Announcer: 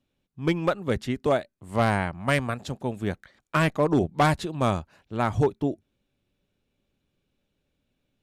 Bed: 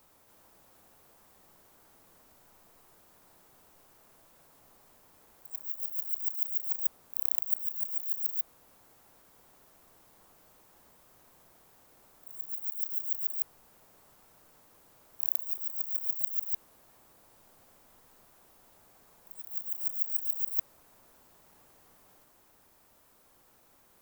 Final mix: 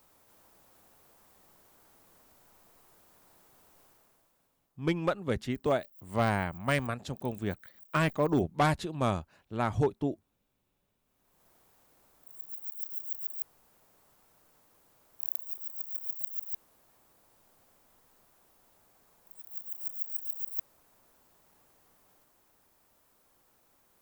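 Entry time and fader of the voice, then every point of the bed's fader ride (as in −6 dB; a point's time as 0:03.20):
4.40 s, −5.0 dB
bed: 0:03.86 −1 dB
0:04.83 −21.5 dB
0:10.98 −21.5 dB
0:11.48 −4.5 dB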